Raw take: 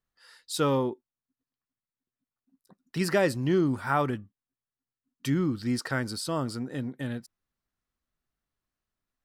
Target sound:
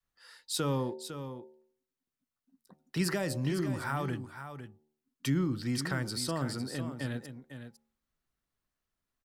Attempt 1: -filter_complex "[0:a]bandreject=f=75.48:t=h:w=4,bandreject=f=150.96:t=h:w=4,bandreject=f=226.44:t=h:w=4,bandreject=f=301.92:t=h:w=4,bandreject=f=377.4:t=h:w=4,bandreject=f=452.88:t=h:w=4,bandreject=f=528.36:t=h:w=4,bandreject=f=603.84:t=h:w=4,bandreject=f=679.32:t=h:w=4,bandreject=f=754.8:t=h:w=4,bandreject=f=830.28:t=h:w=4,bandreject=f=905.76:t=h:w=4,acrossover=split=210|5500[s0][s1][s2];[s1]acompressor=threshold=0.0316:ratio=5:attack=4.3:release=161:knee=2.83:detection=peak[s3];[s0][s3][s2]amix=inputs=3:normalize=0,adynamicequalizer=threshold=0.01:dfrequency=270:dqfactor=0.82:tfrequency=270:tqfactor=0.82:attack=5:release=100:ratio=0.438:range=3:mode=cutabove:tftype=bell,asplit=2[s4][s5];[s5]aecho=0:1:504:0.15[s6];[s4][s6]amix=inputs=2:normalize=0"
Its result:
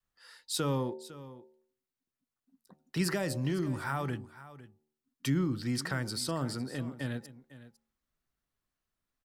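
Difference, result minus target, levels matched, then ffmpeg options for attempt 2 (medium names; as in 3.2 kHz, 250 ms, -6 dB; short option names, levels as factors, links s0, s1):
echo-to-direct -6.5 dB
-filter_complex "[0:a]bandreject=f=75.48:t=h:w=4,bandreject=f=150.96:t=h:w=4,bandreject=f=226.44:t=h:w=4,bandreject=f=301.92:t=h:w=4,bandreject=f=377.4:t=h:w=4,bandreject=f=452.88:t=h:w=4,bandreject=f=528.36:t=h:w=4,bandreject=f=603.84:t=h:w=4,bandreject=f=679.32:t=h:w=4,bandreject=f=754.8:t=h:w=4,bandreject=f=830.28:t=h:w=4,bandreject=f=905.76:t=h:w=4,acrossover=split=210|5500[s0][s1][s2];[s1]acompressor=threshold=0.0316:ratio=5:attack=4.3:release=161:knee=2.83:detection=peak[s3];[s0][s3][s2]amix=inputs=3:normalize=0,adynamicequalizer=threshold=0.01:dfrequency=270:dqfactor=0.82:tfrequency=270:tqfactor=0.82:attack=5:release=100:ratio=0.438:range=3:mode=cutabove:tftype=bell,asplit=2[s4][s5];[s5]aecho=0:1:504:0.316[s6];[s4][s6]amix=inputs=2:normalize=0"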